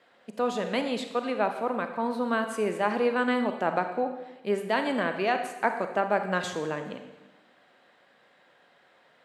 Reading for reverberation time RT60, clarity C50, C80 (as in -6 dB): 1.1 s, 8.0 dB, 10.0 dB